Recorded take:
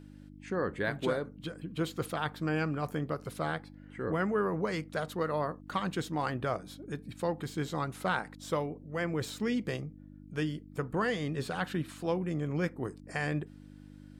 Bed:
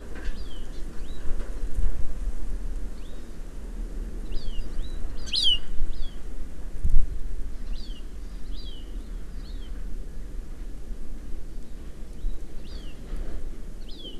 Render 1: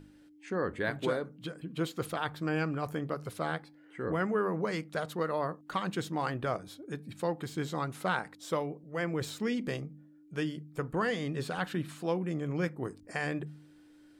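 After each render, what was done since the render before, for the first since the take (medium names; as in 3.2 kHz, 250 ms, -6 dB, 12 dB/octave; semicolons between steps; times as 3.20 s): de-hum 50 Hz, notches 5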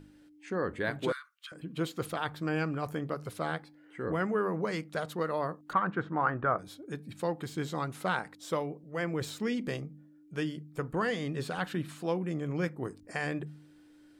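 1.12–1.52 s: steep high-pass 1.1 kHz 72 dB/octave; 5.73–6.59 s: resonant low-pass 1.4 kHz, resonance Q 2.7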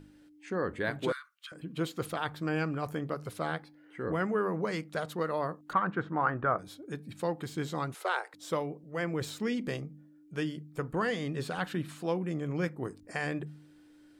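3.47–4.09 s: peaking EQ 7.6 kHz -6 dB 0.25 oct; 7.94–8.34 s: steep high-pass 350 Hz 96 dB/octave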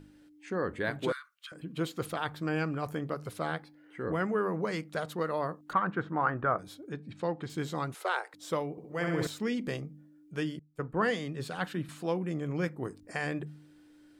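6.89–7.50 s: distance through air 100 m; 8.71–9.27 s: flutter echo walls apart 11.2 m, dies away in 1.1 s; 10.59–11.89 s: three bands expanded up and down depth 100%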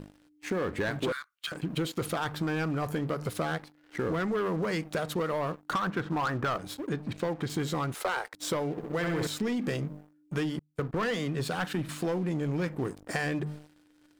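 waveshaping leveller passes 3; compression, threshold -28 dBFS, peak gain reduction 9.5 dB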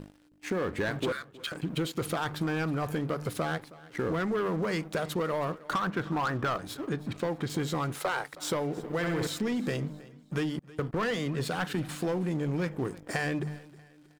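feedback delay 318 ms, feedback 36%, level -20 dB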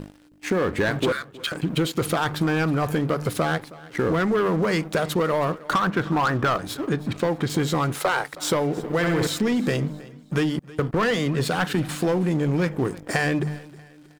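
trim +8 dB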